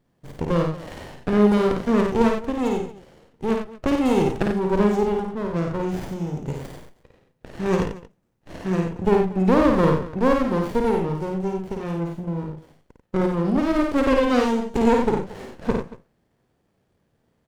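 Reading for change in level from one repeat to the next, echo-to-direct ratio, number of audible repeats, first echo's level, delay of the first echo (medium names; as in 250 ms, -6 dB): no regular repeats, -2.0 dB, 3, -4.0 dB, 53 ms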